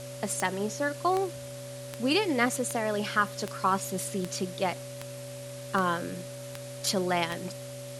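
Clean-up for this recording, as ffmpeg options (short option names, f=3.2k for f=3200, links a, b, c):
-af "adeclick=t=4,bandreject=f=127.4:t=h:w=4,bandreject=f=254.8:t=h:w=4,bandreject=f=382.2:t=h:w=4,bandreject=f=509.6:t=h:w=4,bandreject=f=637:t=h:w=4,bandreject=f=764.4:t=h:w=4,bandreject=f=570:w=30,afwtdn=0.005"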